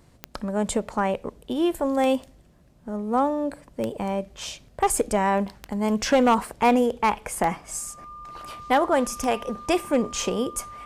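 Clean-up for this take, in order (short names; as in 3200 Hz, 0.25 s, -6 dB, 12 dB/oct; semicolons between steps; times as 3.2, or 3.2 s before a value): clip repair -12.5 dBFS; de-click; notch 1200 Hz, Q 30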